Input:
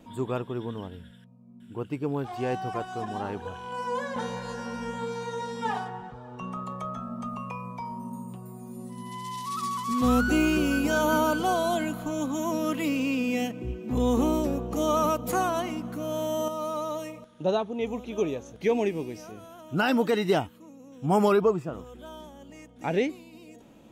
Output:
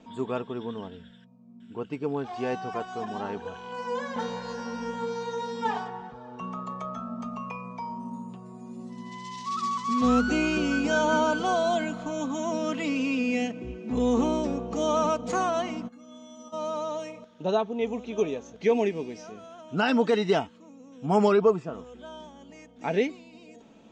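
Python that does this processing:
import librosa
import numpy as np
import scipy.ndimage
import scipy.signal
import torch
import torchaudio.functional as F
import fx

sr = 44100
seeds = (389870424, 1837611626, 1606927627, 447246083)

y = fx.stiff_resonator(x, sr, f0_hz=250.0, decay_s=0.23, stiffness=0.03, at=(15.87, 16.52), fade=0.02)
y = scipy.signal.sosfilt(scipy.signal.butter(6, 7100.0, 'lowpass', fs=sr, output='sos'), y)
y = fx.low_shelf(y, sr, hz=110.0, db=-9.0)
y = y + 0.36 * np.pad(y, (int(4.5 * sr / 1000.0), 0))[:len(y)]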